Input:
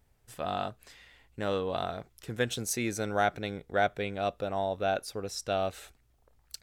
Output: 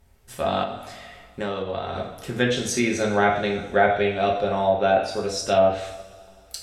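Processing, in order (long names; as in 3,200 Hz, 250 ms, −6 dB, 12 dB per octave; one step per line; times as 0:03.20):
coupled-rooms reverb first 0.57 s, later 2.5 s, from −18 dB, DRR −1.5 dB
treble cut that deepens with the level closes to 2,000 Hz, closed at −19.5 dBFS
0:00.62–0:01.96: downward compressor 10 to 1, threshold −31 dBFS, peak gain reduction 8.5 dB
level +6.5 dB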